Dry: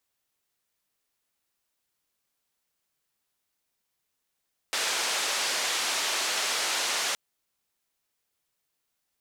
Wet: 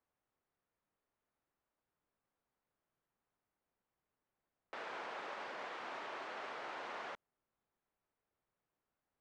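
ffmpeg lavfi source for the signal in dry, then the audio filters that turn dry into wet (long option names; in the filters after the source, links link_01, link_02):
-f lavfi -i "anoisesrc=color=white:duration=2.42:sample_rate=44100:seed=1,highpass=frequency=480,lowpass=frequency=6300,volume=-18.1dB"
-af "alimiter=level_in=5dB:limit=-24dB:level=0:latency=1:release=19,volume=-5dB,lowpass=1300"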